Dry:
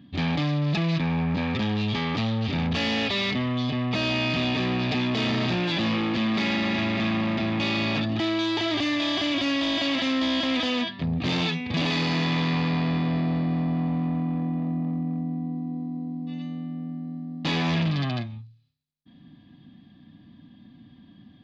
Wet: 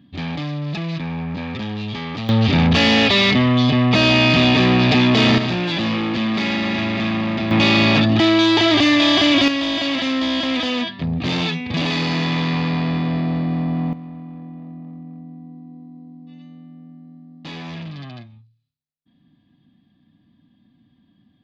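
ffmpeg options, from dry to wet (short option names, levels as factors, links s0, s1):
-af "asetnsamples=n=441:p=0,asendcmd='2.29 volume volume 11dB;5.38 volume volume 4dB;7.51 volume volume 11dB;9.48 volume volume 4dB;13.93 volume volume -8dB',volume=0.891"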